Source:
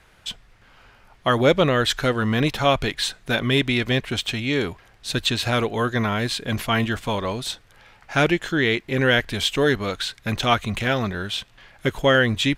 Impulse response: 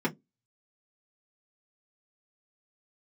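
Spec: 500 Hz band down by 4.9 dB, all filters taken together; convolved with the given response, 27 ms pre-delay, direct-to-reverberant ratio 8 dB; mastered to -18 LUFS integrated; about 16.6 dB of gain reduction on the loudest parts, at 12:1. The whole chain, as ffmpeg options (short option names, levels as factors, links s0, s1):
-filter_complex "[0:a]equalizer=f=500:t=o:g=-6,acompressor=threshold=0.0251:ratio=12,asplit=2[s0][s1];[1:a]atrim=start_sample=2205,adelay=27[s2];[s1][s2]afir=irnorm=-1:irlink=0,volume=0.15[s3];[s0][s3]amix=inputs=2:normalize=0,volume=6.68"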